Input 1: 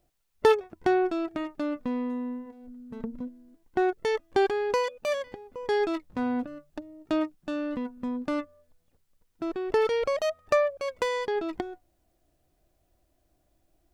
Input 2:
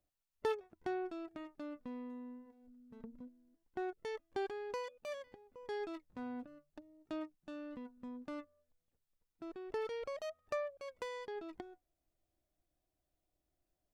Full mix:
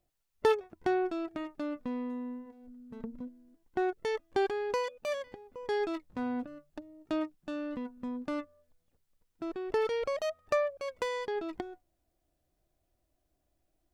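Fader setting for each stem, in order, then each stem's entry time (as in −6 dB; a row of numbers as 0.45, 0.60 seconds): −8.5, −1.5 decibels; 0.00, 0.00 seconds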